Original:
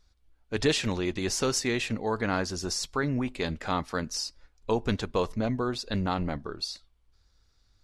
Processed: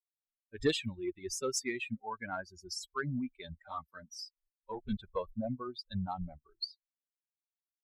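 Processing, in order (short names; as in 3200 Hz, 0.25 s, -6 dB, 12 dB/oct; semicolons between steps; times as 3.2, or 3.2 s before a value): per-bin expansion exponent 3; added harmonics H 3 -23 dB, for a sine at -16.5 dBFS; 3.68–4.97 ensemble effect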